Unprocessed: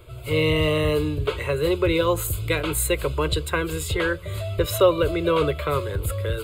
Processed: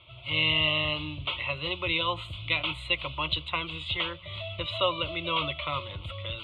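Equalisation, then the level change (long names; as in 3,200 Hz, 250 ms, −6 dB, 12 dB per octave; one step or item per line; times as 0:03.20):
high-pass filter 230 Hz 6 dB per octave
transistor ladder low-pass 3,700 Hz, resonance 60%
phaser with its sweep stopped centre 1,600 Hz, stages 6
+7.5 dB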